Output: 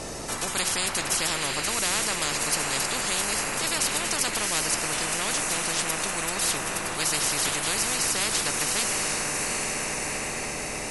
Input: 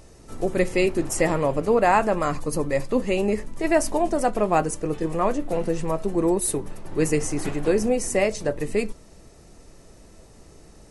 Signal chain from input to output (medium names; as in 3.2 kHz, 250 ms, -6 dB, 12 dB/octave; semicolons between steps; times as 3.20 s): echo that smears into a reverb 766 ms, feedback 55%, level -11.5 dB; spectrum-flattening compressor 10:1; trim -4 dB